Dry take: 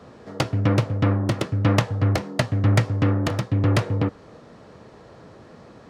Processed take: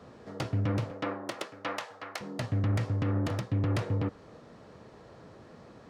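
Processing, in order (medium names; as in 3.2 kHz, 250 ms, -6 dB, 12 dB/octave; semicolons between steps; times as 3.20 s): 0.89–2.20 s: high-pass 340 Hz -> 1 kHz 12 dB/octave; peak limiter -15.5 dBFS, peak gain reduction 10 dB; trim -5.5 dB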